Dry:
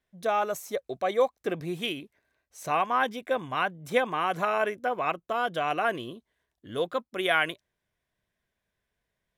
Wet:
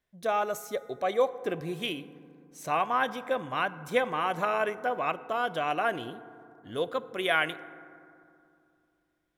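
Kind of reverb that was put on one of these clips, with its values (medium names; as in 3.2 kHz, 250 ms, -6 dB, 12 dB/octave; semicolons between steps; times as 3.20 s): FDN reverb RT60 2.5 s, low-frequency decay 1.35×, high-frequency decay 0.35×, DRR 14.5 dB; trim -1.5 dB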